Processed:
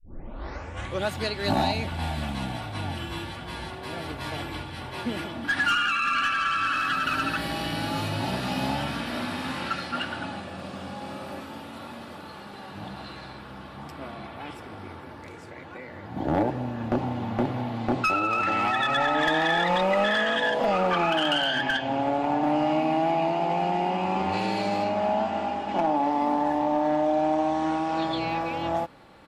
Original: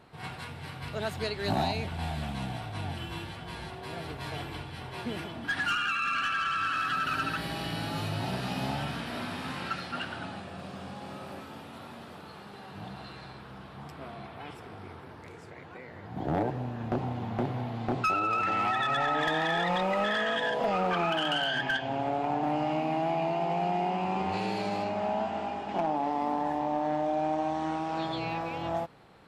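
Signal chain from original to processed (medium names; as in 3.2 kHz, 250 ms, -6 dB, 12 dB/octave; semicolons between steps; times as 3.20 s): tape start-up on the opening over 1.11 s; comb 3.5 ms, depth 34%; trim +4.5 dB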